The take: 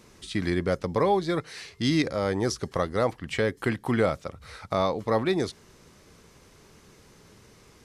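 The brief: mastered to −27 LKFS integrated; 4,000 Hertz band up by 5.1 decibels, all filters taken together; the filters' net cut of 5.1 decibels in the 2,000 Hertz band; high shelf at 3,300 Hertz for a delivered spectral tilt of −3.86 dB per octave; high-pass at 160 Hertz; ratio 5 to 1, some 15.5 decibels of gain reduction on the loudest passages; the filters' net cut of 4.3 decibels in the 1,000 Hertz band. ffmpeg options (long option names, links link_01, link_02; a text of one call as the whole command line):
ffmpeg -i in.wav -af "highpass=160,equalizer=frequency=1000:width_type=o:gain=-4.5,equalizer=frequency=2000:width_type=o:gain=-7.5,highshelf=frequency=3300:gain=5.5,equalizer=frequency=4000:width_type=o:gain=4.5,acompressor=threshold=-38dB:ratio=5,volume=14.5dB" out.wav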